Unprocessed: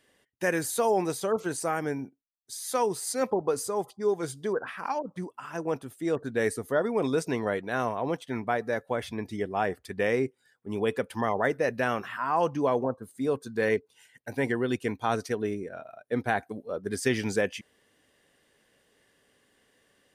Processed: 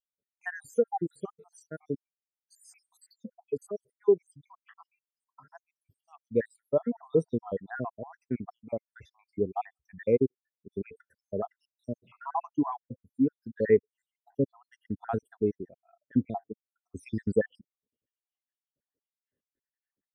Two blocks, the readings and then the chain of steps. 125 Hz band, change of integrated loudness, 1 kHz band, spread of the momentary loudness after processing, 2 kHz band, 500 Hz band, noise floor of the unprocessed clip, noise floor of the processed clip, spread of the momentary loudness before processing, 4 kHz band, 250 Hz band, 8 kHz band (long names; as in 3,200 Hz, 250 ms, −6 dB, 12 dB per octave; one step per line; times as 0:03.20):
−2.0 dB, −2.0 dB, −8.5 dB, 18 LU, −12.5 dB, −2.5 dB, −69 dBFS, below −85 dBFS, 8 LU, below −20 dB, −1.0 dB, below −20 dB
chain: time-frequency cells dropped at random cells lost 78%
low-shelf EQ 400 Hz +9 dB
every bin expanded away from the loudest bin 1.5 to 1